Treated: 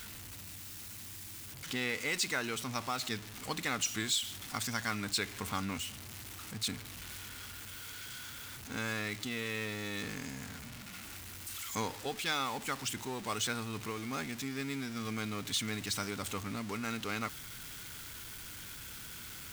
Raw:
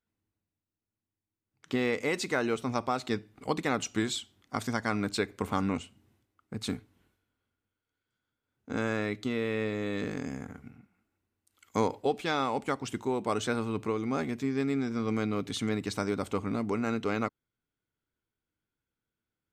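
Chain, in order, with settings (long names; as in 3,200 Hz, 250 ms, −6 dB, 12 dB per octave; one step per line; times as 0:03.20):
converter with a step at zero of −36.5 dBFS
guitar amp tone stack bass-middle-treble 5-5-5
level +8 dB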